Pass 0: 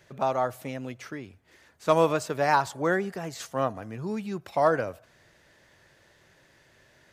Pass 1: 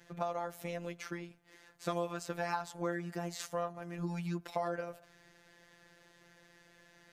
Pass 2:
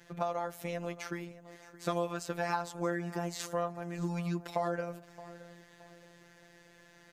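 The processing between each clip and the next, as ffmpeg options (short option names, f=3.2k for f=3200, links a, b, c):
-af "afftfilt=real='hypot(re,im)*cos(PI*b)':imag='0':win_size=1024:overlap=0.75,acompressor=threshold=-34dB:ratio=4,volume=1dB"
-af "aecho=1:1:621|1242|1863:0.126|0.0441|0.0154,volume=2.5dB"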